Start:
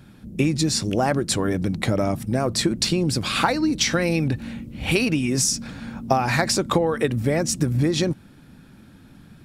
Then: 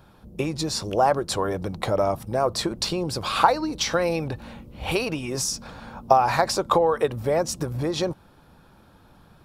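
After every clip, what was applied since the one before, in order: graphic EQ 125/250/500/1000/2000/8000 Hz -5/-10/+4/+8/-7/-6 dB; gain -1 dB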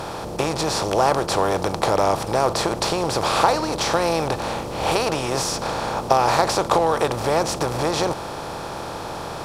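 per-bin compression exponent 0.4; gain -3.5 dB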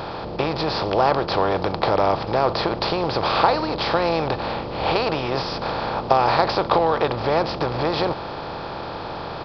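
downsampling 11025 Hz

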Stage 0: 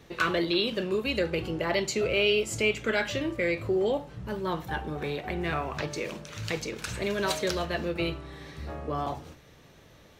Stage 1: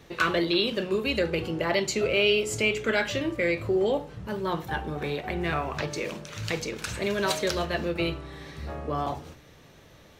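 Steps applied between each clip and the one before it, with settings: de-hum 60.69 Hz, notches 8; gain +2 dB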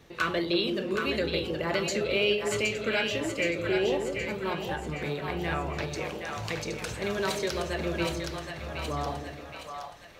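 on a send: split-band echo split 600 Hz, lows 0.164 s, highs 0.77 s, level -4.5 dB; on the sum: ending taper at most 100 dB/s; gain -3.5 dB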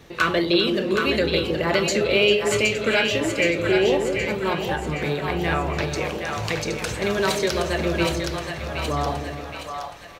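echo 0.398 s -17 dB; gain +7.5 dB

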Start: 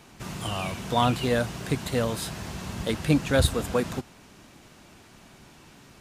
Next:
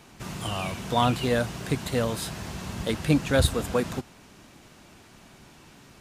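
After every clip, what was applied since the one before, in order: nothing audible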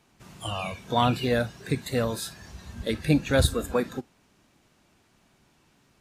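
spectral noise reduction 12 dB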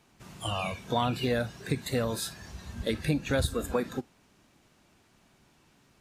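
compressor 4:1, threshold -24 dBFS, peak gain reduction 8 dB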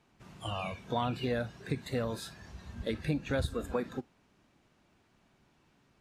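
high shelf 5700 Hz -11 dB; gain -4 dB

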